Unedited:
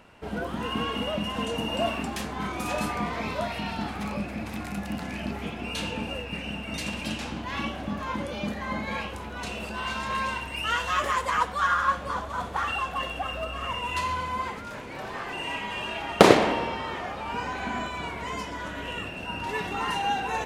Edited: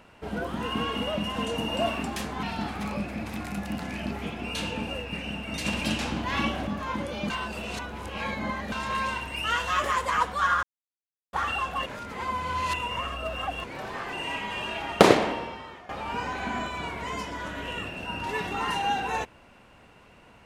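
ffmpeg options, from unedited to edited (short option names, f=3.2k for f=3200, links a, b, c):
-filter_complex "[0:a]asplit=11[a][b][c][d][e][f][g][h][i][j][k];[a]atrim=end=2.432[l];[b]atrim=start=3.628:end=6.852[m];[c]atrim=start=6.848:end=7.872,asetpts=PTS-STARTPTS,volume=4dB[n];[d]atrim=start=7.868:end=8.502[o];[e]atrim=start=8.498:end=9.922,asetpts=PTS-STARTPTS,areverse[p];[f]atrim=start=9.918:end=11.83,asetpts=PTS-STARTPTS,afade=t=out:st=1.908:d=0.004:c=hsin[q];[g]atrim=start=11.83:end=12.53,asetpts=PTS-STARTPTS,volume=0[r];[h]atrim=start=12.53:end=13.062,asetpts=PTS-STARTPTS,afade=t=in:d=0.004:c=hsin[s];[i]atrim=start=13.058:end=14.842,asetpts=PTS-STARTPTS,areverse[t];[j]atrim=start=14.838:end=17.09,asetpts=PTS-STARTPTS,afade=t=out:st=1.222:d=1.03:silence=0.158489[u];[k]atrim=start=17.09,asetpts=PTS-STARTPTS,afade=t=in:d=0.004:c=hsin:silence=0.158489[v];[l][m]acrossfade=d=0.004:c1=hsin:c2=hsin[w];[w][n]acrossfade=d=0.004:c1=hsin:c2=hsin[x];[x][o]acrossfade=d=0.004:c1=hsin:c2=hsin[y];[y][p]acrossfade=d=0.004:c1=hsin:c2=hsin[z];[q][r][s]concat=n=3:v=0:a=1[aa];[z][aa]acrossfade=d=0.004:c1=hsin:c2=hsin[ab];[ab][t]acrossfade=d=0.004:c1=hsin:c2=hsin[ac];[u][v]concat=n=2:v=0:a=1[ad];[ac][ad]acrossfade=d=0.004:c1=hsin:c2=hsin"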